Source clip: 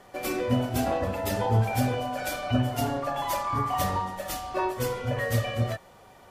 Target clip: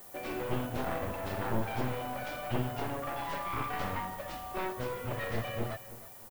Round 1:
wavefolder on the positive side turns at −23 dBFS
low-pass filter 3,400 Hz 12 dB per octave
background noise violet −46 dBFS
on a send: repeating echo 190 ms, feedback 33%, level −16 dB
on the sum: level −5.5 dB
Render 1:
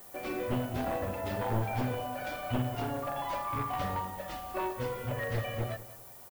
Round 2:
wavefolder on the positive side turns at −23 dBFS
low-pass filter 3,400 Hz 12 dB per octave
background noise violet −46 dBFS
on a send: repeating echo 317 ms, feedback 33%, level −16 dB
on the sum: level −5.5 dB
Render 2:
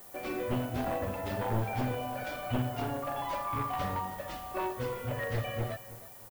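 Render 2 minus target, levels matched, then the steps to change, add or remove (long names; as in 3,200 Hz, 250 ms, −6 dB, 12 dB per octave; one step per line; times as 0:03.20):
wavefolder on the positive side: distortion −8 dB
change: wavefolder on the positive side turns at −29 dBFS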